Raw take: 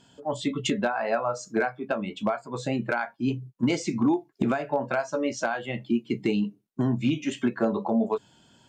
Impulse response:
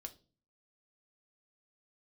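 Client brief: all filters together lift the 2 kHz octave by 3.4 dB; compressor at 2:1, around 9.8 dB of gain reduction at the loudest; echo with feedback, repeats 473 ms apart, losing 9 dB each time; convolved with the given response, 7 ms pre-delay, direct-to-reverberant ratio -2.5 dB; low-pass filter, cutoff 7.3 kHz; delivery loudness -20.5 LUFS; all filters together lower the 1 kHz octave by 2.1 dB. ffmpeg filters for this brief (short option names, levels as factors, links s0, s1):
-filter_complex "[0:a]lowpass=7300,equalizer=f=1000:t=o:g=-5,equalizer=f=2000:t=o:g=7,acompressor=threshold=0.0126:ratio=2,aecho=1:1:473|946|1419|1892:0.355|0.124|0.0435|0.0152,asplit=2[s0][s1];[1:a]atrim=start_sample=2205,adelay=7[s2];[s1][s2]afir=irnorm=-1:irlink=0,volume=2.37[s3];[s0][s3]amix=inputs=2:normalize=0,volume=3.35"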